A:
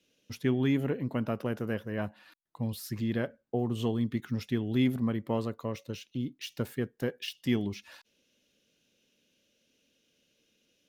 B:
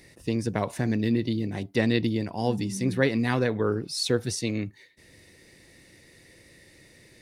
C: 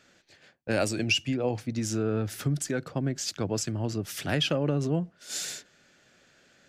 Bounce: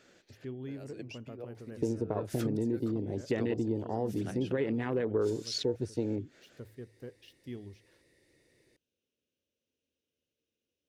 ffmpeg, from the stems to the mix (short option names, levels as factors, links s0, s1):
-filter_complex "[0:a]equalizer=f=78:t=o:w=1.4:g=13.5,bandreject=f=54.69:t=h:w=4,bandreject=f=109.38:t=h:w=4,volume=0.106,asplit=2[s0][s1];[1:a]afwtdn=0.0251,alimiter=limit=0.158:level=0:latency=1,adelay=1550,volume=1.06[s2];[2:a]acompressor=threshold=0.0141:ratio=4,volume=0.75[s3];[s1]apad=whole_len=294735[s4];[s3][s4]sidechaincompress=threshold=0.00126:ratio=12:attack=12:release=103[s5];[s0][s2]amix=inputs=2:normalize=0,equalizer=f=190:t=o:w=0.21:g=-7,acompressor=threshold=0.02:ratio=3,volume=1[s6];[s5][s6]amix=inputs=2:normalize=0,equalizer=f=410:t=o:w=1:g=7.5"